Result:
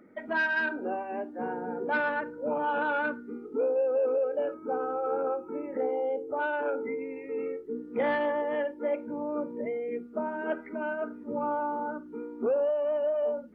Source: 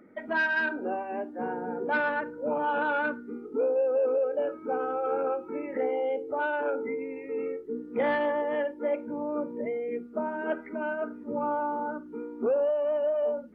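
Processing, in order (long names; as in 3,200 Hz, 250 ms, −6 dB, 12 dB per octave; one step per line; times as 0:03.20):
0:04.54–0:06.36: flat-topped bell 2,900 Hz −8.5 dB
level −1 dB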